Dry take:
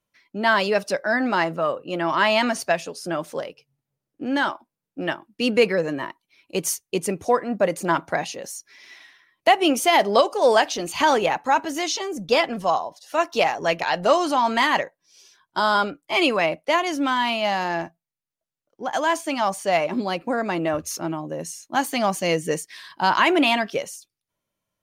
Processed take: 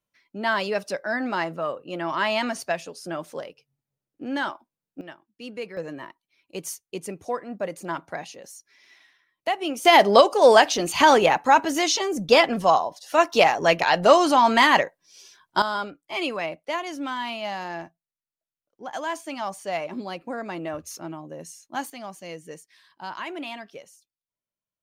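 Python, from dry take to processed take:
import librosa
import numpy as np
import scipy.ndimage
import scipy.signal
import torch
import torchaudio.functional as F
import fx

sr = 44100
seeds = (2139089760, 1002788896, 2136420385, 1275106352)

y = fx.gain(x, sr, db=fx.steps((0.0, -5.0), (5.01, -16.5), (5.77, -9.0), (9.85, 3.0), (15.62, -8.0), (21.9, -16.0)))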